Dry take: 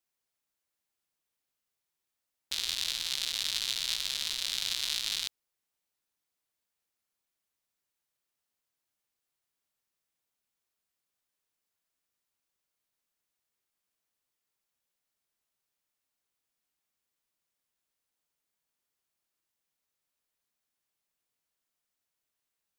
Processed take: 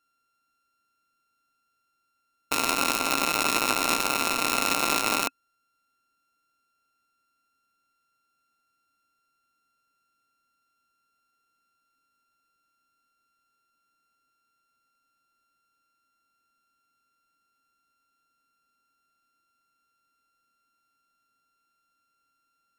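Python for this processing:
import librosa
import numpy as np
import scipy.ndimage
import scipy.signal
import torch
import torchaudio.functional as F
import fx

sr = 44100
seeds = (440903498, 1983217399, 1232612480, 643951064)

y = np.r_[np.sort(x[:len(x) // 32 * 32].reshape(-1, 32), axis=1).ravel(), x[len(x) // 32 * 32:]]
y = fx.small_body(y, sr, hz=(270.0, 1400.0, 2600.0), ring_ms=45, db=9)
y = F.gain(torch.from_numpy(y), 6.5).numpy()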